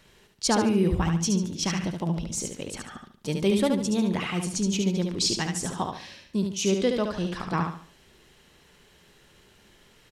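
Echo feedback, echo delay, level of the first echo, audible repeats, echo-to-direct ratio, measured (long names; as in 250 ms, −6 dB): 34%, 72 ms, −5.0 dB, 4, −4.5 dB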